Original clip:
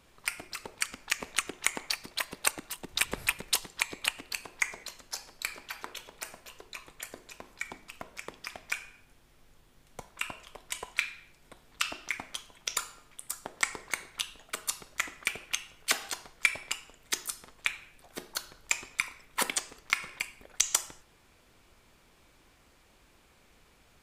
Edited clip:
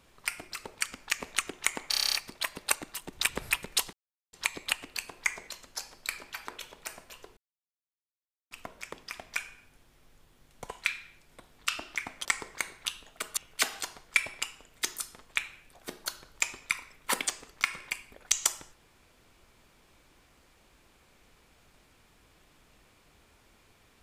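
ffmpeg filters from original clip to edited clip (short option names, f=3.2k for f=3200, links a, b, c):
-filter_complex "[0:a]asplit=15[a][b][c][d][e][f][g][h][i][j][k][l][m][n][o];[a]atrim=end=1.932[p];[b]atrim=start=1.898:end=1.932[q];[c]atrim=start=1.898:end=1.932[r];[d]atrim=start=1.898:end=1.932[s];[e]atrim=start=1.898:end=1.932[t];[f]atrim=start=1.898:end=1.932[u];[g]atrim=start=1.898:end=1.932[v];[h]atrim=start=1.898:end=1.932[w];[i]atrim=start=1.898:end=3.69,asetpts=PTS-STARTPTS,afade=t=out:st=1.788:d=0.004:c=hsin,apad=pad_dur=0.4[x];[j]atrim=start=3.69:end=6.73,asetpts=PTS-STARTPTS,afade=t=in:d=0.004:c=hsin,afade=t=out:st=3.036:d=0.004:c=hsin[y];[k]atrim=start=6.73:end=7.87,asetpts=PTS-STARTPTS,volume=0[z];[l]atrim=start=7.87:end=10.052,asetpts=PTS-STARTPTS,afade=t=in:d=0.004:c=hsin[aa];[m]atrim=start=10.818:end=12.382[ab];[n]atrim=start=13.578:end=14.702[ac];[o]atrim=start=15.658[ad];[p][q]acrossfade=d=0.004:c1=hsin:c2=hsin[ae];[ae][r]acrossfade=d=0.004:c1=hsin:c2=hsin[af];[af][s]acrossfade=d=0.004:c1=hsin:c2=hsin[ag];[ag][t]acrossfade=d=0.004:c1=hsin:c2=hsin[ah];[ah][u]acrossfade=d=0.004:c1=hsin:c2=hsin[ai];[ai][v]acrossfade=d=0.004:c1=hsin:c2=hsin[aj];[aj][w]acrossfade=d=0.004:c1=hsin:c2=hsin[ak];[x][y][z][aa]concat=n=4:v=0:a=1[al];[ak][al]acrossfade=d=0.004:c1=hsin:c2=hsin[am];[am][ab]acrossfade=d=0.004:c1=hsin:c2=hsin[an];[an][ac]acrossfade=d=0.004:c1=hsin:c2=hsin[ao];[ao][ad]acrossfade=d=0.004:c1=hsin:c2=hsin"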